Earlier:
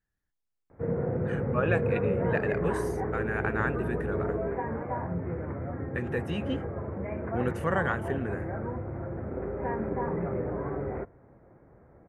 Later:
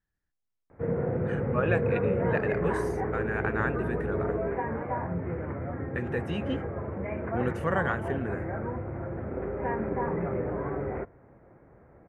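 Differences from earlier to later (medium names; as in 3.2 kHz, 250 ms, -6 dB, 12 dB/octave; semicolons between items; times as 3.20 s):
background: remove distance through air 410 m; master: add treble shelf 11 kHz -10 dB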